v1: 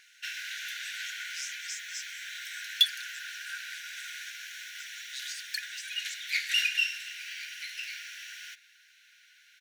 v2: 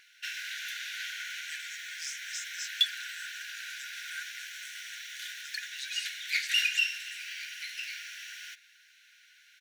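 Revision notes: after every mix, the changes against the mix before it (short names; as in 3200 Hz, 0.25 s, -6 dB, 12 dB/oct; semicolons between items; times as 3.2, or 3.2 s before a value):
speech: entry +0.65 s; second sound: add high shelf 4800 Hz -9.5 dB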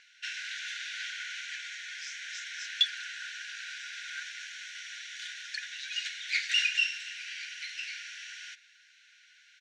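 speech: add air absorption 93 m; master: add LPF 7500 Hz 24 dB/oct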